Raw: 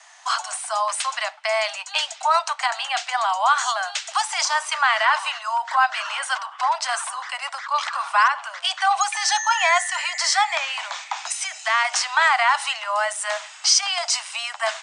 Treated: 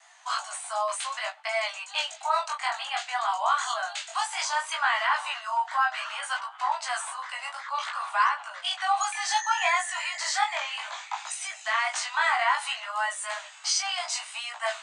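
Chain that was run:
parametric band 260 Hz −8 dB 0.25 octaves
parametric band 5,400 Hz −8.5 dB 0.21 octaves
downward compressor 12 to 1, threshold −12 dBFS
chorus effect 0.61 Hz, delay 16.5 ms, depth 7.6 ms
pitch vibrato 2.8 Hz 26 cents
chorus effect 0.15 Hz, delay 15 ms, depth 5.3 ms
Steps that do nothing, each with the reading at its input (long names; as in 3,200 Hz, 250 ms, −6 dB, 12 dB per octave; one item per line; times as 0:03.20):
parametric band 260 Hz: nothing at its input below 540 Hz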